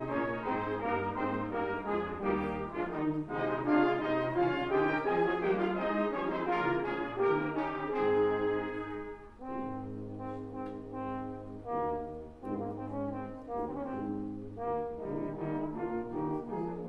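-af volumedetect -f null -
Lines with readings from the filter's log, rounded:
mean_volume: -33.5 dB
max_volume: -16.7 dB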